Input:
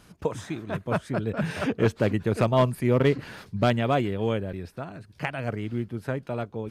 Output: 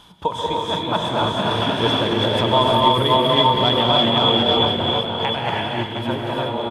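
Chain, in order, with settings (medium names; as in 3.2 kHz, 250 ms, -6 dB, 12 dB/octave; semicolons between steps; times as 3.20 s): backward echo that repeats 358 ms, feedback 41%, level -3 dB; hum notches 50/100/150 Hz; gated-style reverb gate 360 ms rising, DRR -1.5 dB; reverse; upward compressor, threshold -32 dBFS; reverse; peak limiter -12 dBFS, peak gain reduction 8.5 dB; peaking EQ 3.3 kHz +10.5 dB 0.43 oct; small resonant body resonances 930/3400 Hz, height 16 dB, ringing for 20 ms; on a send: delay 321 ms -13 dB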